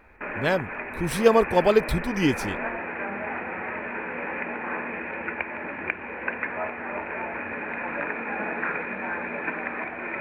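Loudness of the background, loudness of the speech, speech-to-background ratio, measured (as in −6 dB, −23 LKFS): −31.0 LKFS, −23.5 LKFS, 7.5 dB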